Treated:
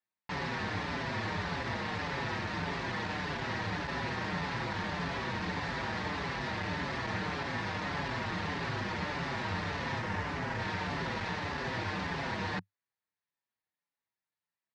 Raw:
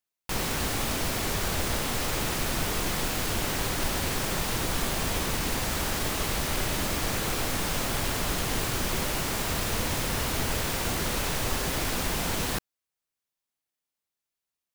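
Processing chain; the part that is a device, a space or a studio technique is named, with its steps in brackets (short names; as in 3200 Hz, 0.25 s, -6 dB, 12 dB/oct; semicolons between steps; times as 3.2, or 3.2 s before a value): barber-pole flanger into a guitar amplifier (endless flanger 5.8 ms -1.7 Hz; soft clip -27 dBFS, distortion -16 dB; speaker cabinet 92–4400 Hz, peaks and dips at 100 Hz +8 dB, 180 Hz +6 dB, 930 Hz +7 dB, 1800 Hz +8 dB, 3100 Hz -4 dB); 10–10.6 bell 4000 Hz -5.5 dB 0.77 oct; gain -1.5 dB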